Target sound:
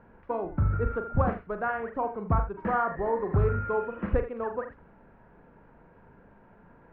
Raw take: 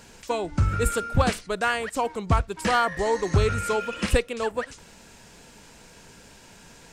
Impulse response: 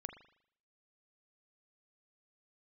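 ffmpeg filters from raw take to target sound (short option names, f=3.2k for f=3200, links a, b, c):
-filter_complex "[0:a]lowpass=f=1.5k:w=0.5412,lowpass=f=1.5k:w=1.3066[a];[1:a]atrim=start_sample=2205,afade=t=out:st=0.16:d=0.01,atrim=end_sample=7497[b];[a][b]afir=irnorm=-1:irlink=0"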